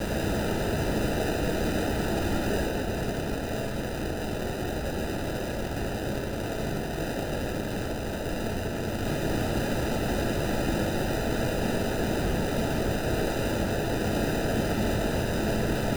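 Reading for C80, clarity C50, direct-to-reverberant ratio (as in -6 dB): 2.0 dB, 0.5 dB, -2.5 dB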